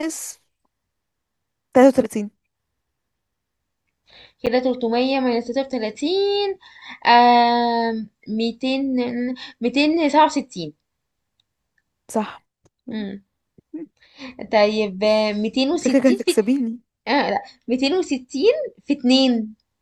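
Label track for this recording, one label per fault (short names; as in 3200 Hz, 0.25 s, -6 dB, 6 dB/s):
4.460000	4.470000	gap 7.7 ms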